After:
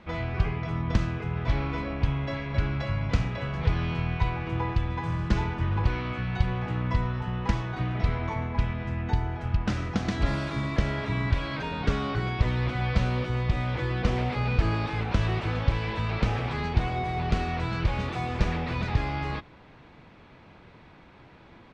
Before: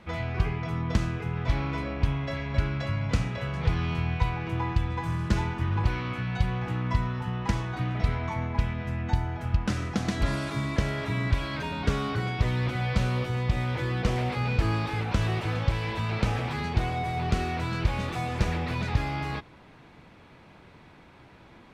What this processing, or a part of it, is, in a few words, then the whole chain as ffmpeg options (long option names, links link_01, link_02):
octave pedal: -filter_complex "[0:a]lowpass=5500,asplit=2[link_01][link_02];[link_02]asetrate=22050,aresample=44100,atempo=2,volume=-9dB[link_03];[link_01][link_03]amix=inputs=2:normalize=0"